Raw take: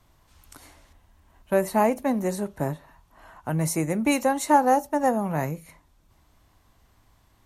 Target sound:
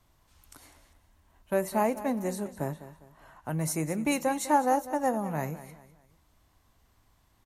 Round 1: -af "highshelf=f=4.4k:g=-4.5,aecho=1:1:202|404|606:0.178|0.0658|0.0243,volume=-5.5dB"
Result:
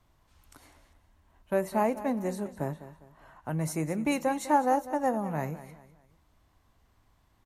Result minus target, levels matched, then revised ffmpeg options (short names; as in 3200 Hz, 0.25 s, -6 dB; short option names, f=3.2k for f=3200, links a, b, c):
8000 Hz band -5.0 dB
-af "highshelf=f=4.4k:g=2.5,aecho=1:1:202|404|606:0.178|0.0658|0.0243,volume=-5.5dB"